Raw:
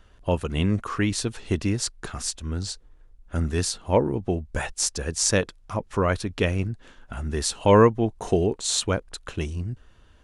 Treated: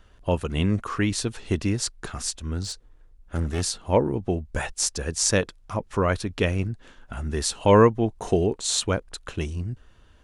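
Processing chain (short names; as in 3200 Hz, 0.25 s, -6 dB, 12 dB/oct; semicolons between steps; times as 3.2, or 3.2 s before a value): 2.62–3.62 one-sided clip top -27 dBFS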